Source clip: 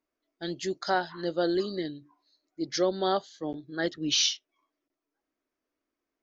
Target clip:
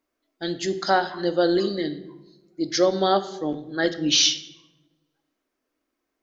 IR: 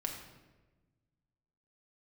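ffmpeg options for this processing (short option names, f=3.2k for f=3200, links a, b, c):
-filter_complex "[0:a]asplit=2[a][b];[1:a]atrim=start_sample=2205,asetrate=57330,aresample=44100,lowshelf=f=160:g=-4.5[c];[b][c]afir=irnorm=-1:irlink=0,volume=-1.5dB[d];[a][d]amix=inputs=2:normalize=0,volume=2.5dB"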